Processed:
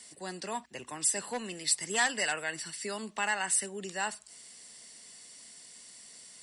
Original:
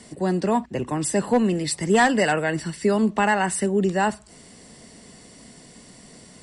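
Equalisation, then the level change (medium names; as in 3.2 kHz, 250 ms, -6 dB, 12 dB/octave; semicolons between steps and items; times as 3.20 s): pre-emphasis filter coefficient 0.97; treble shelf 6.1 kHz -9 dB; +5.5 dB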